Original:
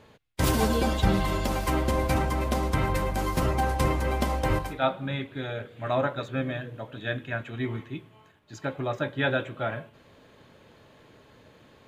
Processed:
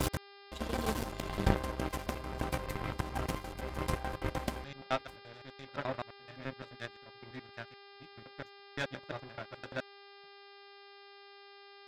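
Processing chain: slices played last to first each 86 ms, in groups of 6; power-law waveshaper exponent 2; mains buzz 400 Hz, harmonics 13, -55 dBFS -3 dB/octave

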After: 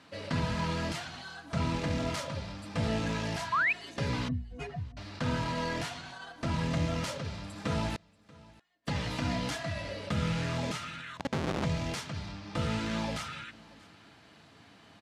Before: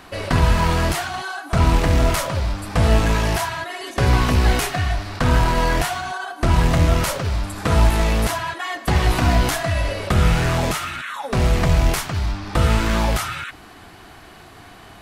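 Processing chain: 4.28–4.97 s: spectral contrast enhancement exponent 2.8; peaking EQ 1 kHz -7.5 dB 2.7 oct; hum notches 60/120/180/240/300/360/420/480 Hz; comb of notches 370 Hz; 11.17–11.64 s: Schmitt trigger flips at -28 dBFS; band-pass 140–5500 Hz; 7.96–8.87 s: inverted gate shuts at -30 dBFS, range -34 dB; delay 634 ms -23 dB; 3.52–3.73 s: painted sound rise 960–2700 Hz -20 dBFS; trim -6.5 dB

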